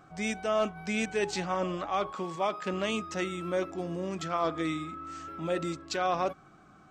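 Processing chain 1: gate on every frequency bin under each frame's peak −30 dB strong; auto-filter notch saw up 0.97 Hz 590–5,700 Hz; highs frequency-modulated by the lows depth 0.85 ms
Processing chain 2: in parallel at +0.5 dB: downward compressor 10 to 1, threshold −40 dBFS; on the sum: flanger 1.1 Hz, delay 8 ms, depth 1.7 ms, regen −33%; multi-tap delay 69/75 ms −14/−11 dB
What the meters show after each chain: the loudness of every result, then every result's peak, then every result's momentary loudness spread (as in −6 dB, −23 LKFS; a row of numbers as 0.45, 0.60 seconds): −34.0, −33.5 LKFS; −17.5, −19.0 dBFS; 7, 6 LU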